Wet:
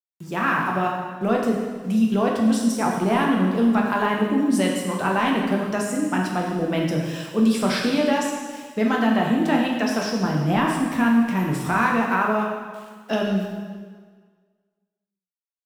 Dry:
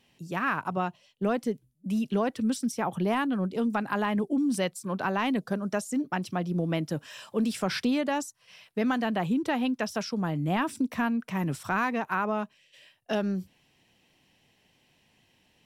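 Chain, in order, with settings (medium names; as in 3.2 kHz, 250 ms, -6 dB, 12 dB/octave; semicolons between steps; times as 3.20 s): small samples zeroed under -50 dBFS; plate-style reverb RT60 1.6 s, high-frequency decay 0.9×, DRR -1.5 dB; trim +3.5 dB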